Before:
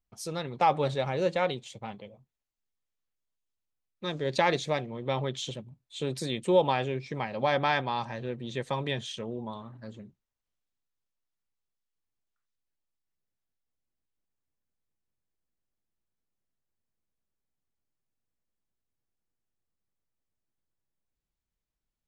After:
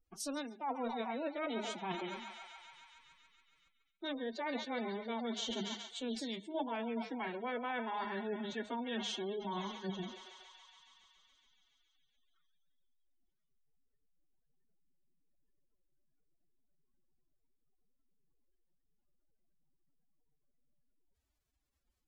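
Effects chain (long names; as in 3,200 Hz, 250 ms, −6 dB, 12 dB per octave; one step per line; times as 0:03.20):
in parallel at +1.5 dB: output level in coarse steps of 21 dB
on the sum: mains-hum notches 60/120/180/240/300/360 Hz
treble cut that deepens with the level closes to 2,900 Hz, closed at −21 dBFS
feedback echo with a high-pass in the loop 140 ms, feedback 81%, high-pass 520 Hz, level −12.5 dB
reversed playback
downward compressor 8 to 1, threshold −39 dBFS, peak gain reduction 25.5 dB
reversed playback
phase-vocoder pitch shift with formants kept +9.5 semitones
gate on every frequency bin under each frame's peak −30 dB strong
level +3.5 dB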